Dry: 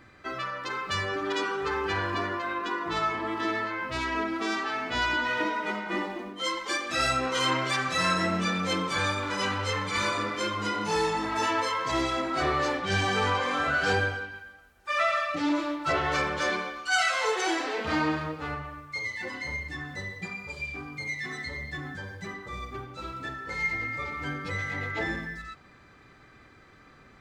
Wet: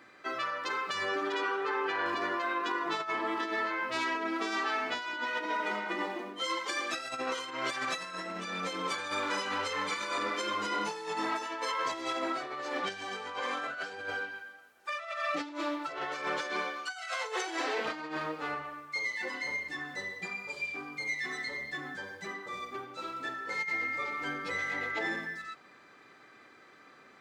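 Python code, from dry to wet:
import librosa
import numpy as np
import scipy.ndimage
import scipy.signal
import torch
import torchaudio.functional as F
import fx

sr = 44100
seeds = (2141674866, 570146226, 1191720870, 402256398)

y = fx.bass_treble(x, sr, bass_db=-7, treble_db=-9, at=(1.34, 2.06))
y = fx.over_compress(y, sr, threshold_db=-30.0, ratio=-0.5)
y = scipy.signal.sosfilt(scipy.signal.butter(2, 300.0, 'highpass', fs=sr, output='sos'), y)
y = F.gain(torch.from_numpy(y), -2.5).numpy()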